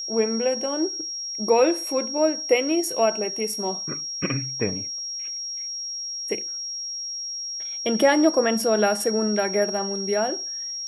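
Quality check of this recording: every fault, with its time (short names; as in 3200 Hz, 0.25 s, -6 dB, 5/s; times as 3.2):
tone 5600 Hz -29 dBFS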